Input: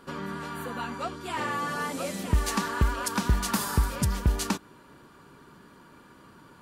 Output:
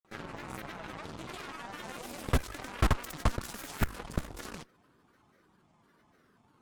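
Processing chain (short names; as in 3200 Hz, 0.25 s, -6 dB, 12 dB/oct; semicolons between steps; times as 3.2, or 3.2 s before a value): level quantiser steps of 21 dB; grains, grains 20/s, pitch spread up and down by 7 st; added harmonics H 8 -6 dB, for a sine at -15.5 dBFS; gain -2 dB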